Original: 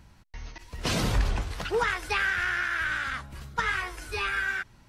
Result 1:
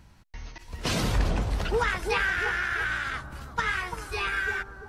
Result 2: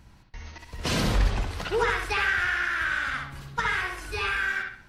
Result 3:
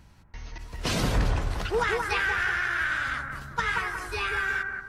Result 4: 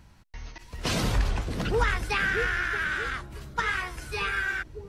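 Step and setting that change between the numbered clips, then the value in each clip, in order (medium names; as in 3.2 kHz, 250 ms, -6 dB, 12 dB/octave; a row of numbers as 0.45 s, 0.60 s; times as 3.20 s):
bucket-brigade echo, time: 342 ms, 65 ms, 181 ms, 629 ms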